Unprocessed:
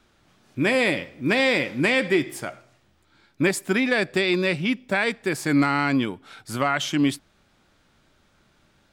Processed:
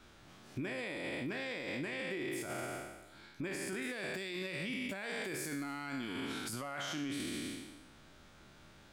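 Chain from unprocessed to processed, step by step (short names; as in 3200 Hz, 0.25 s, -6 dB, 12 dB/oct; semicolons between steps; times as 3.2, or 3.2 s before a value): spectral trails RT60 1.10 s; 3.82–6.53 high shelf 6800 Hz +11 dB; limiter -31.5 dBFS, peak gain reduction 25.5 dB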